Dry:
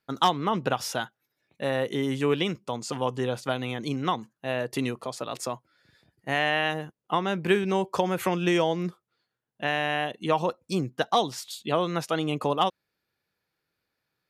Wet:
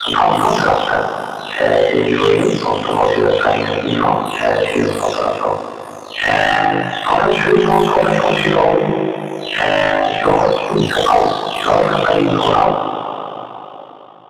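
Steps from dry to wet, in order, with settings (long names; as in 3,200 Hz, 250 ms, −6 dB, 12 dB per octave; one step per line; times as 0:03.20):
every frequency bin delayed by itself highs early, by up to 477 ms
coupled-rooms reverb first 0.42 s, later 3.6 s, from −18 dB, DRR −9.5 dB
mid-hump overdrive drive 23 dB, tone 1,100 Hz, clips at −1 dBFS
ring modulation 26 Hz
level +1.5 dB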